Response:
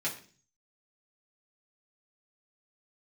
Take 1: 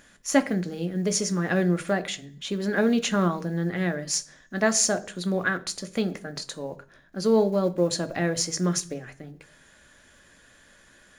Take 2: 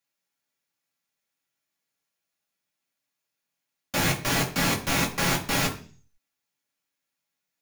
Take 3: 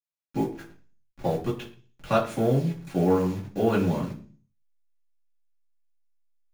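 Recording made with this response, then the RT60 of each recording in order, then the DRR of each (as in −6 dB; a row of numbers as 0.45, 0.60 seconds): 3; 0.40, 0.40, 0.40 seconds; 8.5, −1.0, −6.5 decibels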